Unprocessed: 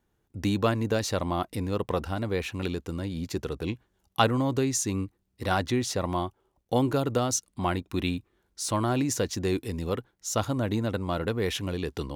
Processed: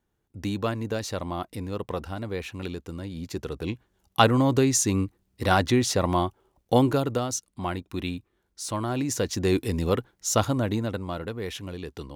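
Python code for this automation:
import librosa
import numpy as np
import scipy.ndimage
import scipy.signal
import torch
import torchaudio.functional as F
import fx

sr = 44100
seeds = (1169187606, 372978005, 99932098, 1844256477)

y = fx.gain(x, sr, db=fx.line((3.1, -3.0), (4.41, 5.0), (6.76, 5.0), (7.29, -2.5), (8.89, -2.5), (9.62, 5.5), (10.31, 5.5), (11.31, -5.0)))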